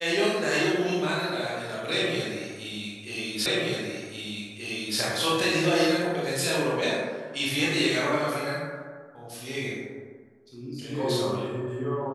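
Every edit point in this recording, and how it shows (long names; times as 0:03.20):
0:03.46: the same again, the last 1.53 s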